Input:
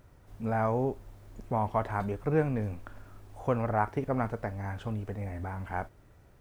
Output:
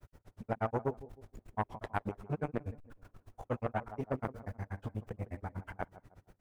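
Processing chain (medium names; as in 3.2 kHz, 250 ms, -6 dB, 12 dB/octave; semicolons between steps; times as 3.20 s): granulator 76 ms, grains 8.3 per s, spray 15 ms, pitch spread up and down by 0 st; on a send: tape echo 157 ms, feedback 41%, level -17 dB, low-pass 1 kHz; on the sum: transformer saturation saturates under 1.1 kHz; trim +3 dB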